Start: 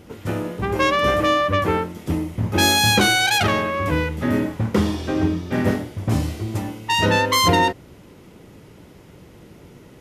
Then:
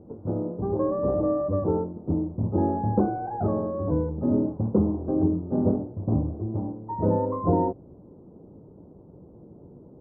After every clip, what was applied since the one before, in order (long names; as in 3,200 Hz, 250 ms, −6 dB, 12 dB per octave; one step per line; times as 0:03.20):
Bessel low-pass filter 530 Hz, order 8
low-shelf EQ 120 Hz −6.5 dB
mains-hum notches 60/120 Hz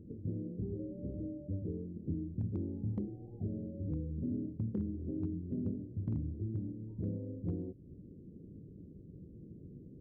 downward compressor 2.5 to 1, threshold −35 dBFS, peak gain reduction 12.5 dB
Gaussian smoothing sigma 25 samples
hard clipping −27 dBFS, distortion −33 dB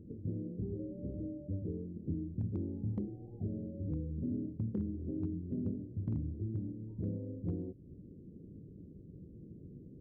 no processing that can be heard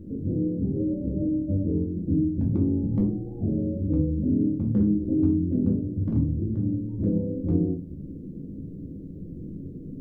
rectangular room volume 240 cubic metres, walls furnished, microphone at 2.4 metres
level +7.5 dB